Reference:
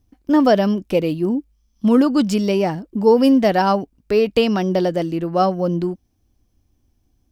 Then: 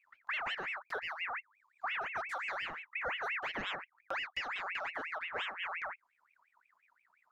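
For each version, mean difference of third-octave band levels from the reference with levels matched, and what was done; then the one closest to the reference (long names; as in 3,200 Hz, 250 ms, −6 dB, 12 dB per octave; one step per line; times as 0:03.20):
14.0 dB: high-shelf EQ 3,000 Hz −9 dB
downward compressor 4 to 1, threshold −28 dBFS, peak gain reduction 16 dB
ring modulator whose carrier an LFO sweeps 1,700 Hz, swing 45%, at 5.7 Hz
level −7.5 dB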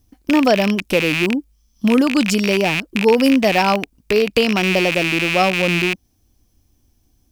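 9.0 dB: loose part that buzzes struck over −31 dBFS, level −11 dBFS
high-shelf EQ 3,800 Hz +9 dB
in parallel at 0 dB: downward compressor, threshold −21 dBFS, peak gain reduction 12.5 dB
on the sum: level −3 dB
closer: second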